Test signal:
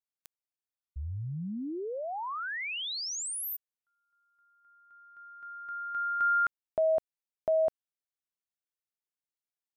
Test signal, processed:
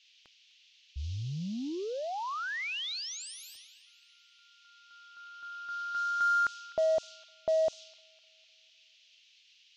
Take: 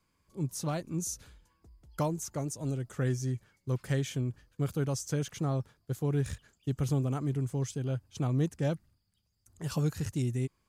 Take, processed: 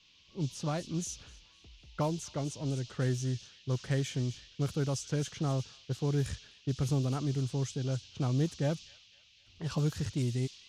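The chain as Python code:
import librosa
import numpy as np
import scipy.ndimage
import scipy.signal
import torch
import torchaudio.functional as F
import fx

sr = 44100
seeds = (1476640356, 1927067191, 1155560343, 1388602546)

p1 = fx.echo_wet_highpass(x, sr, ms=253, feedback_pct=48, hz=2800.0, wet_db=-11.0)
p2 = 10.0 ** (-35.5 / 20.0) * np.tanh(p1 / 10.0 ** (-35.5 / 20.0))
p3 = p1 + F.gain(torch.from_numpy(p2), -11.0).numpy()
p4 = fx.dmg_noise_band(p3, sr, seeds[0], low_hz=2700.0, high_hz=6600.0, level_db=-50.0)
p5 = fx.env_lowpass(p4, sr, base_hz=1800.0, full_db=-24.5)
y = F.gain(torch.from_numpy(p5), -1.5).numpy()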